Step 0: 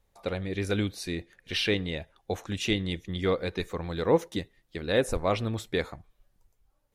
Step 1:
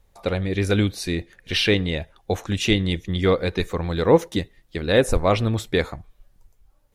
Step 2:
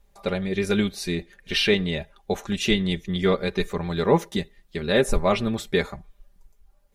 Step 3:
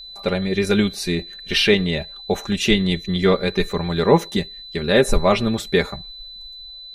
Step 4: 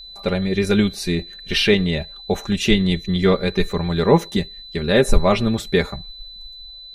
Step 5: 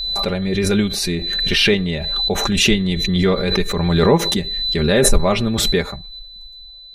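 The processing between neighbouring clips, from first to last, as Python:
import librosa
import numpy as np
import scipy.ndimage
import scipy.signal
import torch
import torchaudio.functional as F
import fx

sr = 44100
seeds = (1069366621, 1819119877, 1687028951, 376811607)

y1 = fx.low_shelf(x, sr, hz=97.0, db=5.5)
y1 = y1 * librosa.db_to_amplitude(7.0)
y2 = y1 + 0.68 * np.pad(y1, (int(5.0 * sr / 1000.0), 0))[:len(y1)]
y2 = y2 * librosa.db_to_amplitude(-3.0)
y3 = y2 + 10.0 ** (-40.0 / 20.0) * np.sin(2.0 * np.pi * 4000.0 * np.arange(len(y2)) / sr)
y3 = y3 * librosa.db_to_amplitude(4.5)
y4 = fx.low_shelf(y3, sr, hz=180.0, db=5.5)
y4 = y4 * librosa.db_to_amplitude(-1.0)
y5 = fx.pre_swell(y4, sr, db_per_s=25.0)
y5 = y5 * librosa.db_to_amplitude(-1.0)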